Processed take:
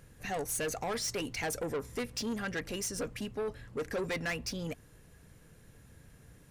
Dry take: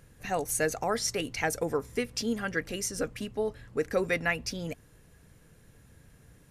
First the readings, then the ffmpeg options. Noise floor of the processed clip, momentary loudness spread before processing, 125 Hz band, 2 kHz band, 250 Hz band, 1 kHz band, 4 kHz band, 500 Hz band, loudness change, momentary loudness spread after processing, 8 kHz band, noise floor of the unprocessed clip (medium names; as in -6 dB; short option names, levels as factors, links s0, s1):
-59 dBFS, 6 LU, -3.0 dB, -6.0 dB, -4.0 dB, -5.5 dB, -3.0 dB, -5.5 dB, -4.5 dB, 5 LU, -3.5 dB, -59 dBFS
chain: -af "asoftclip=type=tanh:threshold=0.0316"